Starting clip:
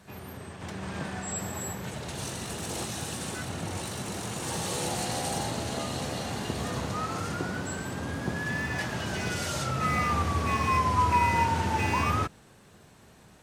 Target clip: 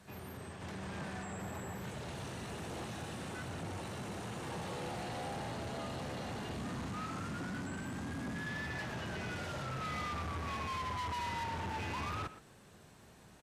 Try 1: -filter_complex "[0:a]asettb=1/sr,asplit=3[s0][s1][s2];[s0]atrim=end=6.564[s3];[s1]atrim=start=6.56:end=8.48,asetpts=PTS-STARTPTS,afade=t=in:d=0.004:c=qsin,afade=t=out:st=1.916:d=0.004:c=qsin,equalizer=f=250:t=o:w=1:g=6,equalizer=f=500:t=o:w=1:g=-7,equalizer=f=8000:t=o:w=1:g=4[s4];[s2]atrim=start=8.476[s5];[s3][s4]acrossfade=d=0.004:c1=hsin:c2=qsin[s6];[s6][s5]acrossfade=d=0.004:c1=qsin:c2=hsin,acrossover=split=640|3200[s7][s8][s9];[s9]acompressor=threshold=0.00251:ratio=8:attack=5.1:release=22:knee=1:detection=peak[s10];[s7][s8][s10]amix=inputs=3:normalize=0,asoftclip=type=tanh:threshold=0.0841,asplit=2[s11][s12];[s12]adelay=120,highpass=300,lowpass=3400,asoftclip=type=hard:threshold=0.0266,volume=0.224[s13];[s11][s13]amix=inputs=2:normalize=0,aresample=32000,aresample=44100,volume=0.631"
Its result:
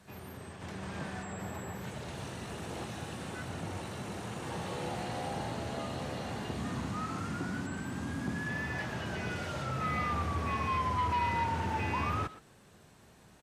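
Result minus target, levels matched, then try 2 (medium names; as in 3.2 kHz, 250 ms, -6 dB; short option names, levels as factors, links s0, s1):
saturation: distortion -10 dB
-filter_complex "[0:a]asettb=1/sr,asplit=3[s0][s1][s2];[s0]atrim=end=6.564[s3];[s1]atrim=start=6.56:end=8.48,asetpts=PTS-STARTPTS,afade=t=in:d=0.004:c=qsin,afade=t=out:st=1.916:d=0.004:c=qsin,equalizer=f=250:t=o:w=1:g=6,equalizer=f=500:t=o:w=1:g=-7,equalizer=f=8000:t=o:w=1:g=4[s4];[s2]atrim=start=8.476[s5];[s3][s4]acrossfade=d=0.004:c1=hsin:c2=qsin[s6];[s6][s5]acrossfade=d=0.004:c1=qsin:c2=hsin,acrossover=split=640|3200[s7][s8][s9];[s9]acompressor=threshold=0.00251:ratio=8:attack=5.1:release=22:knee=1:detection=peak[s10];[s7][s8][s10]amix=inputs=3:normalize=0,asoftclip=type=tanh:threshold=0.0224,asplit=2[s11][s12];[s12]adelay=120,highpass=300,lowpass=3400,asoftclip=type=hard:threshold=0.0266,volume=0.224[s13];[s11][s13]amix=inputs=2:normalize=0,aresample=32000,aresample=44100,volume=0.631"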